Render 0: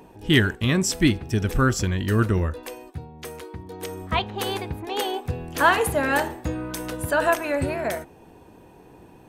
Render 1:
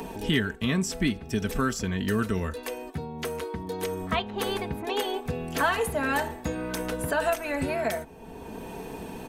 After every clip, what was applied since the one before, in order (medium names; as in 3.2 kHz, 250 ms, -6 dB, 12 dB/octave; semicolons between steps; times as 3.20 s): comb 4.5 ms, depth 52%; three bands compressed up and down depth 70%; trim -5 dB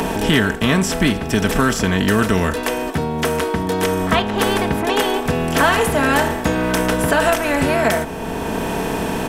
spectral levelling over time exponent 0.6; trim +7 dB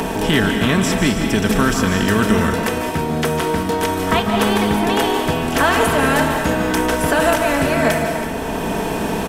delay 327 ms -13.5 dB; reverberation, pre-delay 141 ms, DRR 4.5 dB; trim -1 dB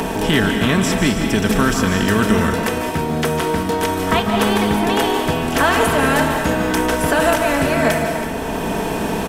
crackle 27 per s -30 dBFS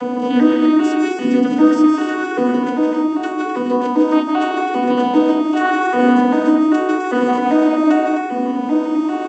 vocoder on a broken chord major triad, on B3, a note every 395 ms; multi-tap echo 163/258 ms -6.5/-7 dB; FDN reverb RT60 0.33 s, low-frequency decay 1.55×, high-frequency decay 0.35×, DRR 1.5 dB; trim -2.5 dB